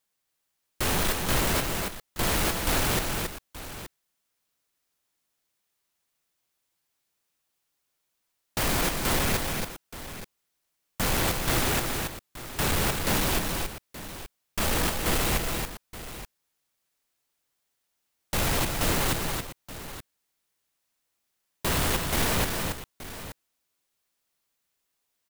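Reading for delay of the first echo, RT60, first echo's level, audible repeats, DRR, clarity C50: 277 ms, no reverb, -5.0 dB, 2, no reverb, no reverb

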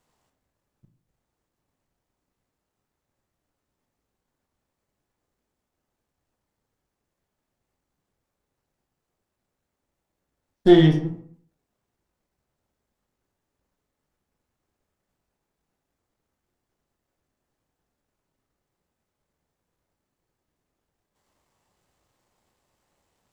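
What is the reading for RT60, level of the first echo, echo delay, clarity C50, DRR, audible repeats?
0.60 s, no echo, no echo, 8.5 dB, 4.0 dB, no echo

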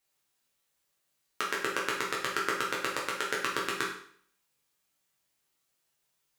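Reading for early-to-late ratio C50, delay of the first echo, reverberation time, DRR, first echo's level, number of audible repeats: 4.5 dB, no echo, 0.55 s, -4.5 dB, no echo, no echo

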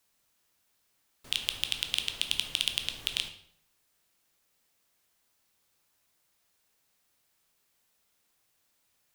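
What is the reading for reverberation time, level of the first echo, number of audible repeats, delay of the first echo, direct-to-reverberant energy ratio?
0.65 s, no echo, no echo, no echo, 6.5 dB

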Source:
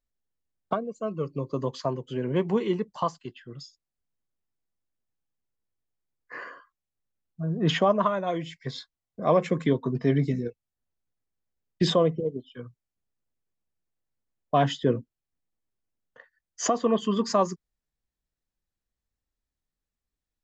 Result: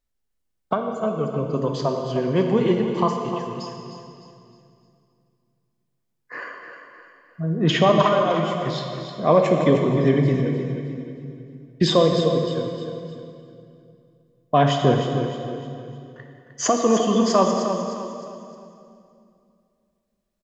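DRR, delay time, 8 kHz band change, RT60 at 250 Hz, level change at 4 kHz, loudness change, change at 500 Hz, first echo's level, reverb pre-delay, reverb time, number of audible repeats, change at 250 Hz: 2.0 dB, 307 ms, no reading, 3.0 s, +6.5 dB, +5.5 dB, +7.0 dB, -9.0 dB, 24 ms, 2.6 s, 4, +6.5 dB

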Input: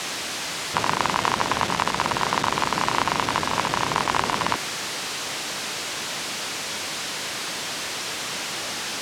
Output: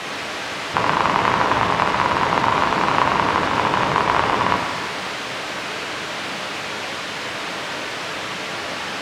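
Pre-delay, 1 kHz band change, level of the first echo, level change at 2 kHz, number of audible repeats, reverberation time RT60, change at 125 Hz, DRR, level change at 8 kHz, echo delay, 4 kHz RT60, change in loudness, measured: 4 ms, +5.5 dB, no echo, +5.0 dB, no echo, 1.7 s, +5.5 dB, 1.0 dB, -7.0 dB, no echo, 1.6 s, +4.0 dB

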